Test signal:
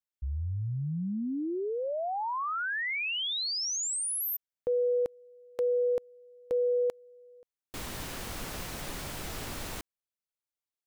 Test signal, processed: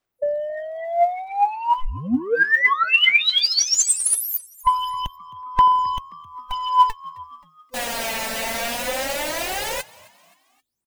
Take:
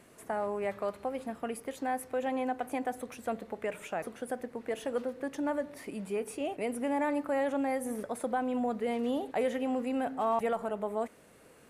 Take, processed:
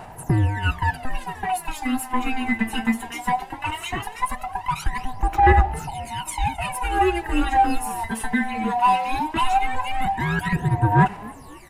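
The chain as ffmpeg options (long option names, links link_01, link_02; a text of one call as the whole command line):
ffmpeg -i in.wav -filter_complex "[0:a]afftfilt=real='real(if(lt(b,1008),b+24*(1-2*mod(floor(b/24),2)),b),0)':imag='imag(if(lt(b,1008),b+24*(1-2*mod(floor(b/24),2)),b),0)':win_size=2048:overlap=0.75,adynamicequalizer=threshold=0.00282:dfrequency=2300:dqfactor=1.7:tfrequency=2300:tqfactor=1.7:attack=5:release=100:ratio=0.45:range=2.5:mode=boostabove:tftype=bell,acrossover=split=1600[link_01][link_02];[link_01]asoftclip=type=tanh:threshold=-30dB[link_03];[link_03][link_02]amix=inputs=2:normalize=0,aphaser=in_gain=1:out_gain=1:delay=4.5:decay=0.79:speed=0.18:type=sinusoidal,asplit=4[link_04][link_05][link_06][link_07];[link_05]adelay=264,afreqshift=79,volume=-22dB[link_08];[link_06]adelay=528,afreqshift=158,volume=-29.1dB[link_09];[link_07]adelay=792,afreqshift=237,volume=-36.3dB[link_10];[link_04][link_08][link_09][link_10]amix=inputs=4:normalize=0,volume=8dB" out.wav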